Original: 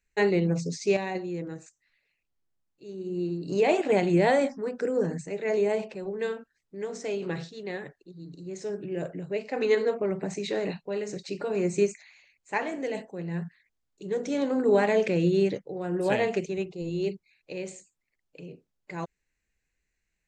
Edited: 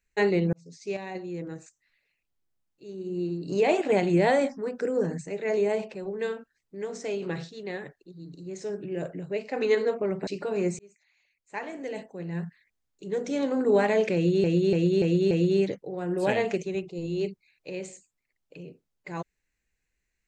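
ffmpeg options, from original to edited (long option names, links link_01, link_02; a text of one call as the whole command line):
ffmpeg -i in.wav -filter_complex "[0:a]asplit=8[link_01][link_02][link_03][link_04][link_05][link_06][link_07][link_08];[link_01]atrim=end=0.53,asetpts=PTS-STARTPTS,afade=type=out:start_time=0.526:duration=0.004:curve=hsin[link_09];[link_02]atrim=start=0.53:end=10.272,asetpts=PTS-STARTPTS,afade=type=in:duration=0.99[link_10];[link_03]atrim=start=11.258:end=11.78,asetpts=PTS-STARTPTS,afade=type=out:start_time=0.518:duration=0.004:curve=hsin[link_11];[link_04]atrim=start=11.78:end=15.432,asetpts=PTS-STARTPTS,afade=type=in:duration=1.63[link_12];[link_05]atrim=start=15.138:end=15.432[link_13];[link_06]atrim=start=15.138:end=15.432[link_14];[link_07]atrim=start=15.138:end=15.432[link_15];[link_08]atrim=start=15.138[link_16];[link_09][link_10]concat=n=2:v=0:a=1[link_17];[link_11][link_12]concat=n=2:v=0:a=1[link_18];[link_17][link_18]acrossfade=duration=0.004:curve1=hsin:curve2=hsin[link_19];[link_19][link_13]acrossfade=duration=0.004:curve1=hsin:curve2=hsin[link_20];[link_20][link_14]acrossfade=duration=0.004:curve1=hsin:curve2=hsin[link_21];[link_21][link_15]acrossfade=duration=0.004:curve1=hsin:curve2=hsin[link_22];[link_22][link_16]acrossfade=duration=0.004:curve1=hsin:curve2=hsin" out.wav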